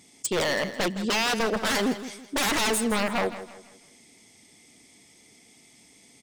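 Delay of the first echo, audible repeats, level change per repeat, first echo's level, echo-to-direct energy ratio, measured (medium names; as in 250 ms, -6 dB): 164 ms, 3, -8.5 dB, -13.0 dB, -12.5 dB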